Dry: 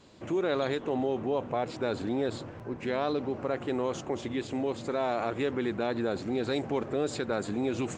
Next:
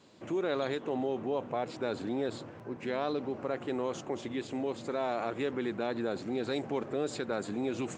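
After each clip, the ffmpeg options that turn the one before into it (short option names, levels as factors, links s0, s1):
-af "highpass=120,volume=0.708"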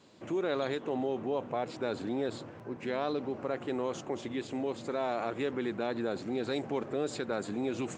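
-af anull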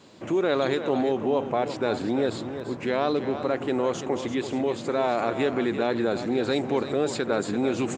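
-af "aecho=1:1:338:0.316,volume=2.51"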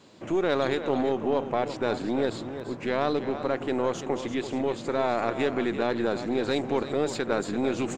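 -af "aeval=exprs='0.282*(cos(1*acos(clip(val(0)/0.282,-1,1)))-cos(1*PI/2))+0.0224*(cos(3*acos(clip(val(0)/0.282,-1,1)))-cos(3*PI/2))+0.01*(cos(6*acos(clip(val(0)/0.282,-1,1)))-cos(6*PI/2))':c=same"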